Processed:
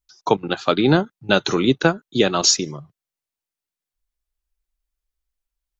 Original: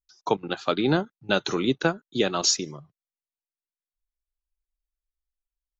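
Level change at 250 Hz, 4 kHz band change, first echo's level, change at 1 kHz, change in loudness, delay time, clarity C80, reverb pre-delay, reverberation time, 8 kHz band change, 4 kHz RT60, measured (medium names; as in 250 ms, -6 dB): +6.5 dB, +6.0 dB, no echo, +6.0 dB, +6.5 dB, no echo, no reverb, no reverb, no reverb, no reading, no reverb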